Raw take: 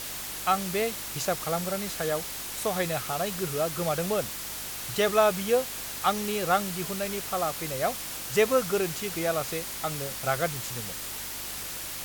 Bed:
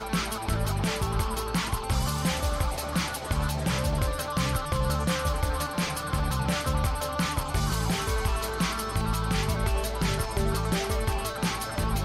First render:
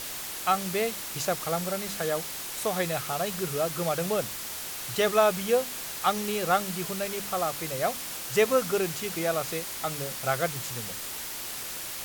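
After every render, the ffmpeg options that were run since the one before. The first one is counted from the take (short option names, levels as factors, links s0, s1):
-af "bandreject=f=50:t=h:w=4,bandreject=f=100:t=h:w=4,bandreject=f=150:t=h:w=4,bandreject=f=200:t=h:w=4,bandreject=f=250:t=h:w=4,bandreject=f=300:t=h:w=4"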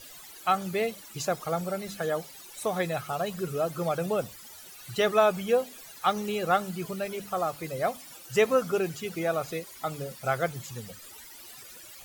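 -af "afftdn=nr=16:nf=-37"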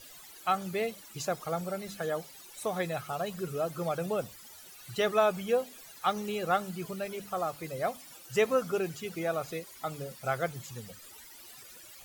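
-af "volume=0.668"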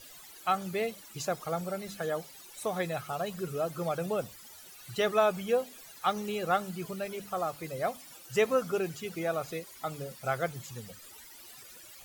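-af anull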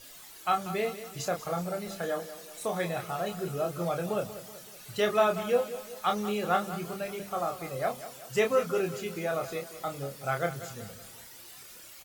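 -filter_complex "[0:a]asplit=2[s0][s1];[s1]adelay=29,volume=0.562[s2];[s0][s2]amix=inputs=2:normalize=0,aecho=1:1:188|376|564|752|940:0.211|0.104|0.0507|0.0249|0.0122"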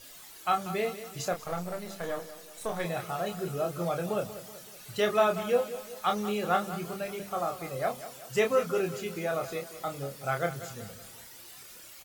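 -filter_complex "[0:a]asettb=1/sr,asplit=3[s0][s1][s2];[s0]atrim=end=1.334[s3];[s1]atrim=start=1.33:end=2.85,asetpts=PTS-STARTPTS,afade=t=in:d=0.004:c=qsin,afade=t=out:st=1.516:d=0.004:c=qsin,aeval=exprs='if(lt(val(0),0),0.447*val(0),val(0))':c=same[s4];[s2]atrim=start=2.846[s5];[s3][s4]acrossfade=d=0.004:c1=hsin:c2=qsin[s6];[s6][s5]acrossfade=d=0.004:c1=qsin:c2=hsin"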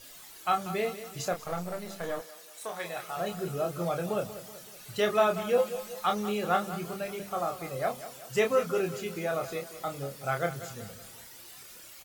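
-filter_complex "[0:a]asettb=1/sr,asplit=3[s0][s1][s2];[s0]atrim=end=2.214[s3];[s1]atrim=start=2.21:end=3.17,asetpts=PTS-STARTPTS,afade=t=in:d=0.004:c=qsin,afade=t=out:st=0.956:d=0.004:c=qsin,highpass=f=740:p=1[s4];[s2]atrim=start=3.166[s5];[s3][s4]acrossfade=d=0.004:c1=hsin:c2=qsin[s6];[s6][s5]acrossfade=d=0.004:c1=qsin:c2=hsin,asettb=1/sr,asplit=3[s7][s8][s9];[s7]atrim=end=5.574[s10];[s8]atrim=start=5.57:end=6.06,asetpts=PTS-STARTPTS,afade=t=in:d=0.004:c=qsin,afade=t=out:st=0.486:d=0.004:c=qsin,aecho=1:1:5.7:0.76,atrim=end_sample=21609[s11];[s9]atrim=start=6.056[s12];[s10][s11]acrossfade=d=0.004:c1=hsin:c2=qsin[s13];[s13][s12]acrossfade=d=0.004:c1=qsin:c2=hsin"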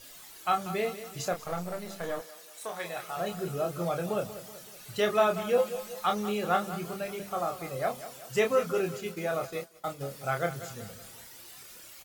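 -filter_complex "[0:a]asettb=1/sr,asplit=3[s0][s1][s2];[s0]atrim=end=8.734[s3];[s1]atrim=start=8.73:end=10.01,asetpts=PTS-STARTPTS,afade=t=in:d=0.004:c=qsin,afade=t=out:st=1.276:d=0.004:c=qsin,agate=range=0.0224:threshold=0.0158:ratio=3:release=100:detection=peak[s4];[s2]atrim=start=10.006[s5];[s3][s4]acrossfade=d=0.004:c1=hsin:c2=qsin[s6];[s6][s5]acrossfade=d=0.004:c1=qsin:c2=hsin"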